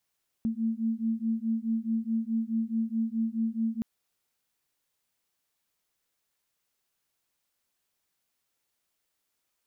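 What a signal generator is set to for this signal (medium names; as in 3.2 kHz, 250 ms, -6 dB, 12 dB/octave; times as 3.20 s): beating tones 223 Hz, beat 4.7 Hz, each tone -29.5 dBFS 3.37 s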